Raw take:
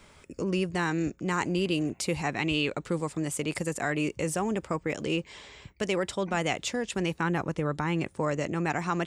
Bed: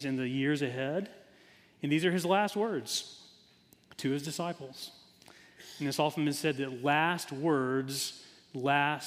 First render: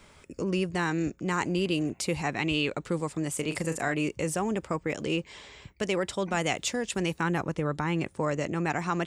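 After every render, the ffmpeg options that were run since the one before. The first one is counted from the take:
-filter_complex "[0:a]asettb=1/sr,asplit=3[s0][s1][s2];[s0]atrim=end=3.344[s3];[s1]atrim=start=3.34:end=3.94,asetpts=PTS-STARTPTS,afade=t=in:d=0.004:c=qsin,afade=t=out:st=0.596:d=0.004:c=qsin,asplit=2[s4][s5];[s5]adelay=37,volume=0.316[s6];[s4][s6]amix=inputs=2:normalize=0,atrim=end_sample=26460[s7];[s2]atrim=start=3.936[s8];[s3][s7]acrossfade=d=0.004:c1=hsin:c2=qsin[s9];[s9][s8]acrossfade=d=0.004:c1=qsin:c2=hsin,asettb=1/sr,asplit=3[s10][s11][s12];[s10]atrim=end=6.144[s13];[s11]atrim=start=6.14:end=7.41,asetpts=PTS-STARTPTS,afade=t=in:d=0.004:c=qsin,afade=t=out:st=1.266:d=0.004:c=qsin,highshelf=f=6500:g=6.5[s14];[s12]atrim=start=7.406[s15];[s13][s14]acrossfade=d=0.004:c1=hsin:c2=qsin[s16];[s16][s15]acrossfade=d=0.004:c1=qsin:c2=hsin"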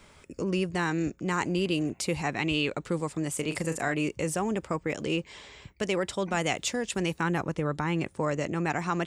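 -af anull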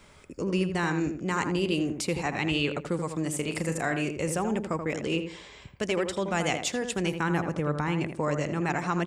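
-filter_complex "[0:a]asplit=2[s0][s1];[s1]adelay=81,lowpass=f=1800:p=1,volume=0.473,asplit=2[s2][s3];[s3]adelay=81,lowpass=f=1800:p=1,volume=0.3,asplit=2[s4][s5];[s5]adelay=81,lowpass=f=1800:p=1,volume=0.3,asplit=2[s6][s7];[s7]adelay=81,lowpass=f=1800:p=1,volume=0.3[s8];[s0][s2][s4][s6][s8]amix=inputs=5:normalize=0"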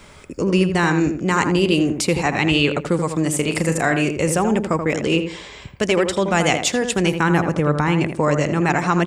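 -af "volume=3.16"

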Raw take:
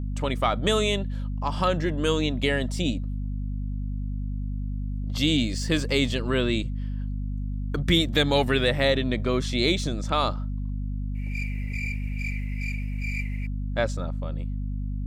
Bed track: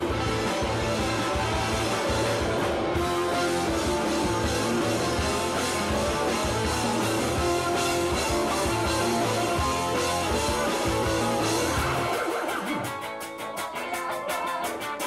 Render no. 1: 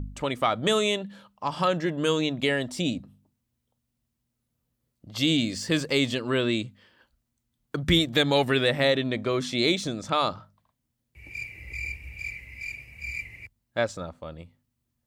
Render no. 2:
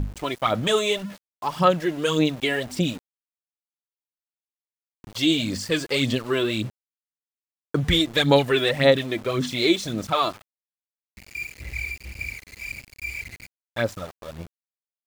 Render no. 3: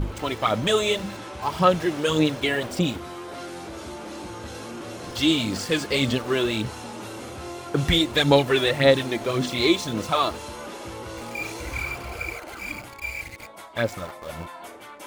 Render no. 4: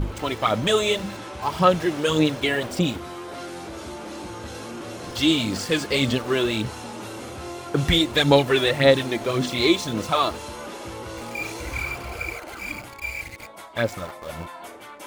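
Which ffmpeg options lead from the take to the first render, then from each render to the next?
-af "bandreject=f=50:t=h:w=4,bandreject=f=100:t=h:w=4,bandreject=f=150:t=h:w=4,bandreject=f=200:t=h:w=4,bandreject=f=250:t=h:w=4"
-af "aphaser=in_gain=1:out_gain=1:delay=3:decay=0.6:speed=1.8:type=sinusoidal,aeval=exprs='val(0)*gte(abs(val(0)),0.0126)':c=same"
-filter_complex "[1:a]volume=0.282[s0];[0:a][s0]amix=inputs=2:normalize=0"
-af "volume=1.12"

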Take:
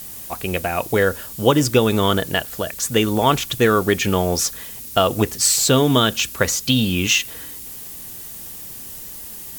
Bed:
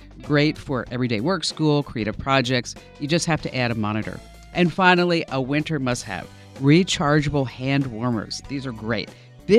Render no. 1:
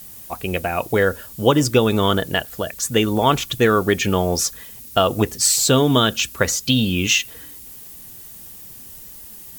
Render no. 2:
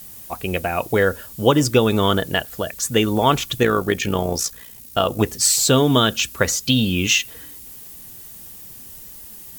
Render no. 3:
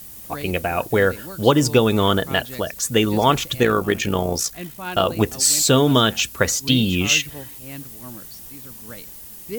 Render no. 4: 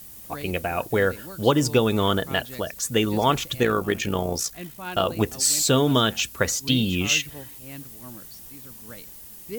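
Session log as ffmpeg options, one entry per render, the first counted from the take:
-af "afftdn=nr=6:nf=-35"
-filter_complex "[0:a]asettb=1/sr,asplit=3[s0][s1][s2];[s0]atrim=end=3.634[s3];[s1]atrim=start=3.63:end=5.2,asetpts=PTS-STARTPTS,afade=t=in:d=0.004:c=qsin,afade=t=out:st=1.566:d=0.004:c=qsin,tremolo=f=59:d=0.571[s4];[s2]atrim=start=5.196[s5];[s3][s4]acrossfade=d=0.004:c1=hsin:c2=qsin[s6];[s6][s5]acrossfade=d=0.004:c1=qsin:c2=hsin"
-filter_complex "[1:a]volume=0.168[s0];[0:a][s0]amix=inputs=2:normalize=0"
-af "volume=0.631"

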